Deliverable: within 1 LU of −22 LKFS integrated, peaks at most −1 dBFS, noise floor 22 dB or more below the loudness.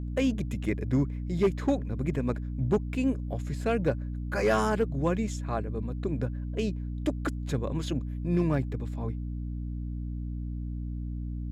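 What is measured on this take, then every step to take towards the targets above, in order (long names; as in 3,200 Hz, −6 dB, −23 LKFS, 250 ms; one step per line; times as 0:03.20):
share of clipped samples 0.3%; peaks flattened at −17.5 dBFS; mains hum 60 Hz; hum harmonics up to 300 Hz; level of the hum −32 dBFS; integrated loudness −30.5 LKFS; sample peak −17.5 dBFS; target loudness −22.0 LKFS
→ clipped peaks rebuilt −17.5 dBFS
mains-hum notches 60/120/180/240/300 Hz
level +8.5 dB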